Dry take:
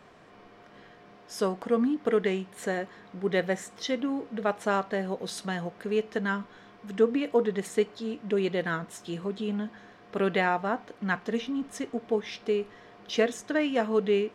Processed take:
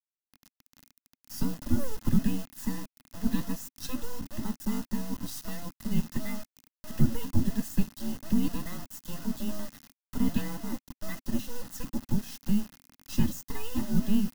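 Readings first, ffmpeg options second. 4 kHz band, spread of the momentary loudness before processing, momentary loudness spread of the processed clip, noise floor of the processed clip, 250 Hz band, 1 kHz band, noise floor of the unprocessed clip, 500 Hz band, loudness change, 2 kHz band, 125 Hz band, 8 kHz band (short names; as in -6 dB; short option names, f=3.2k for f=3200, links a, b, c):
-5.5 dB, 9 LU, 11 LU, under -85 dBFS, +0.5 dB, -12.5 dB, -54 dBFS, -18.0 dB, -3.5 dB, -13.5 dB, +6.0 dB, +2.0 dB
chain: -filter_complex "[0:a]afftfilt=real='real(if(between(b,1,1008),(2*floor((b-1)/24)+1)*24-b,b),0)':imag='imag(if(between(b,1,1008),(2*floor((b-1)/24)+1)*24-b,b),0)*if(between(b,1,1008),-1,1)':win_size=2048:overlap=0.75,adynamicequalizer=threshold=0.00562:dfrequency=1000:dqfactor=6.5:tfrequency=1000:tqfactor=6.5:attack=5:release=100:ratio=0.375:range=2:mode=boostabove:tftype=bell,acrossover=split=560|2800[a][b][c];[a]aeval=exprs='abs(val(0))':c=same[d];[b]acompressor=threshold=-44dB:ratio=8[e];[d][e][c]amix=inputs=3:normalize=0,flanger=delay=0.1:depth=7.1:regen=-90:speed=0.48:shape=triangular,acrusher=bits=5:dc=4:mix=0:aa=0.000001,aexciter=amount=2.1:drive=5.1:freq=4.9k,asuperstop=centerf=2300:order=8:qfactor=7.4,lowshelf=f=320:t=q:w=3:g=7"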